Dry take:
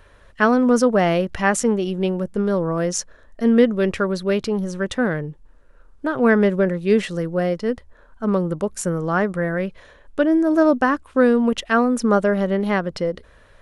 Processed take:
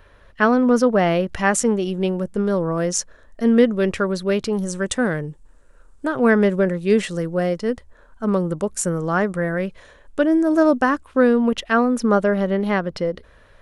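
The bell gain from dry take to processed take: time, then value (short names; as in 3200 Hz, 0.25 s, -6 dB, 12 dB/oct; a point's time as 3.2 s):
bell 8100 Hz 0.82 oct
-7 dB
from 1.28 s +3.5 dB
from 4.53 s +14 dB
from 6.08 s +6 dB
from 11.05 s -3.5 dB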